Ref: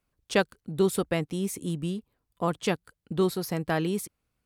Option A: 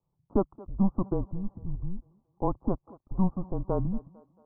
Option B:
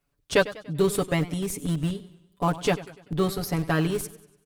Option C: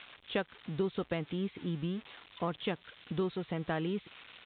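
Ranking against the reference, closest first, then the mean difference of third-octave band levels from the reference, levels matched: B, C, A; 5.0, 8.0, 12.5 dB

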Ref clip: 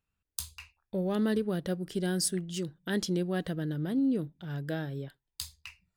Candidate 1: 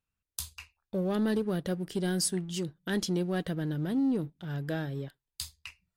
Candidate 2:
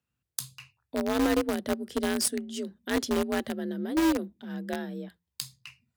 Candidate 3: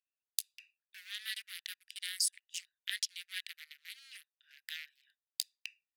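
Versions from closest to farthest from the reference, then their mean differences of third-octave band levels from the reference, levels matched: 1, 2, 3; 1.5, 8.5, 17.5 dB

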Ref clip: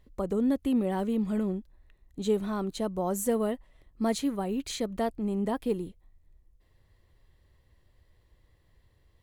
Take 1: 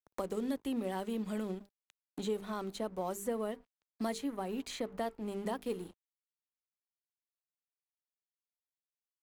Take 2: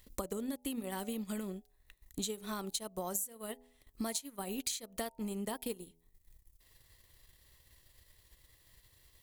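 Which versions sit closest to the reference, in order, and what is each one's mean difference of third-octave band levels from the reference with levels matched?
1, 2; 5.5, 8.5 dB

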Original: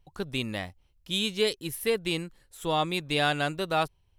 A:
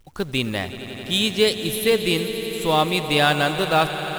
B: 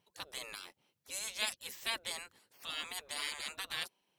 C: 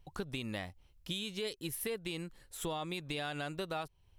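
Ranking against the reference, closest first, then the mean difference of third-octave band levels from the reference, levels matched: C, A, B; 4.0, 6.5, 12.0 dB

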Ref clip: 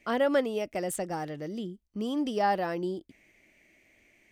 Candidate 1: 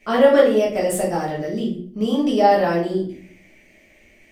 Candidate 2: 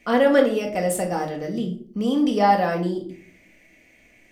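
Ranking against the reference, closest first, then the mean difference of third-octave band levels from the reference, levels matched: 2, 1; 3.5, 5.0 dB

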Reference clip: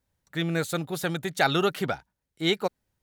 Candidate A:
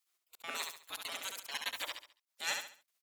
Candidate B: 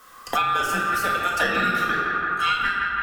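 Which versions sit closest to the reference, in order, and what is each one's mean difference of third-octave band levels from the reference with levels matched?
B, A; 10.0, 15.0 dB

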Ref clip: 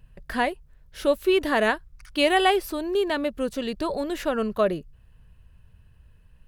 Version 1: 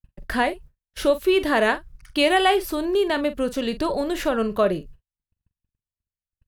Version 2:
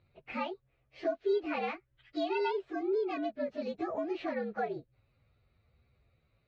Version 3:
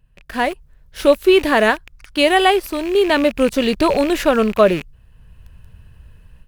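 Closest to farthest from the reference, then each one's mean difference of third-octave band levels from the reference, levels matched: 1, 3, 2; 2.0, 3.5, 8.0 dB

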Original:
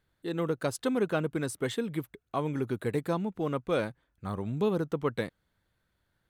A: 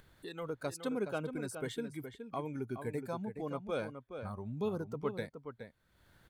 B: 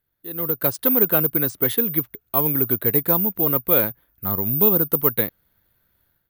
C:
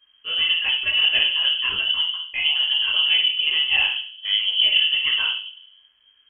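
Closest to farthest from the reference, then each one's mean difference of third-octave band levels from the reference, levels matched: A, B, C; 4.0, 7.5, 18.5 dB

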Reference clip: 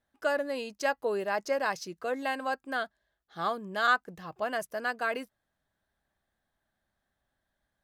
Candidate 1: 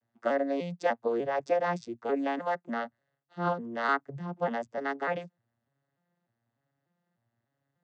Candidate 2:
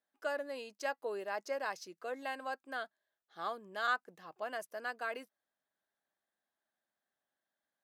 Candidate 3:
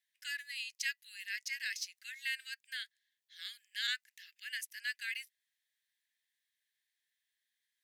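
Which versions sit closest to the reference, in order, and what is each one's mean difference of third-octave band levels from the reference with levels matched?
2, 1, 3; 1.0, 9.0, 17.5 dB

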